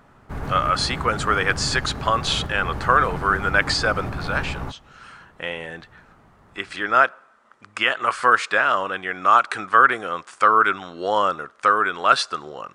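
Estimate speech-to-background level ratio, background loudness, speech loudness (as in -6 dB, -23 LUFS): 11.0 dB, -31.5 LUFS, -20.5 LUFS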